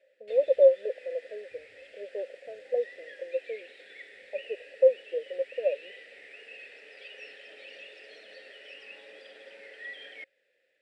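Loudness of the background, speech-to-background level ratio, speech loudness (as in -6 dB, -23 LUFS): -47.5 LUFS, 19.0 dB, -28.5 LUFS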